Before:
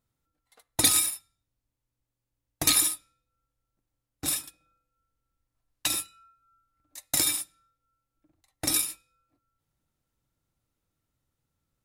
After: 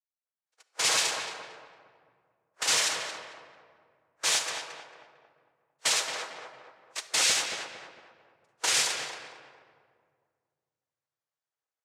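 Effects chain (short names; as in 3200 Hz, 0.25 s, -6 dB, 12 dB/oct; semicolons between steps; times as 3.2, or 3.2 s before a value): gate -56 dBFS, range -25 dB; FFT band-pass 1100–5100 Hz; AGC gain up to 16.5 dB; soft clip -24 dBFS, distortion -5 dB; noise vocoder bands 3; tape echo 0.225 s, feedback 49%, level -3.5 dB, low-pass 1900 Hz; shoebox room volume 2400 m³, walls mixed, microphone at 0.61 m; gain +2 dB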